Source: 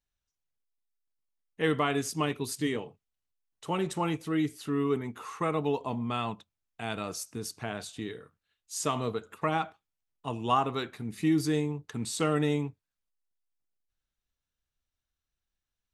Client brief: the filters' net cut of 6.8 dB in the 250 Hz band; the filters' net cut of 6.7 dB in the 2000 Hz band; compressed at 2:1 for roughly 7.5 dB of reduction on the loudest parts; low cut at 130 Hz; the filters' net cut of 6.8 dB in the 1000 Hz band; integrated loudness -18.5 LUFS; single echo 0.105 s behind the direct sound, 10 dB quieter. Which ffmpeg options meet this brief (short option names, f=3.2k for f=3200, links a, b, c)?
-af "highpass=130,equalizer=f=250:t=o:g=-8.5,equalizer=f=1k:t=o:g=-6.5,equalizer=f=2k:t=o:g=-6.5,acompressor=threshold=-41dB:ratio=2,aecho=1:1:105:0.316,volume=23.5dB"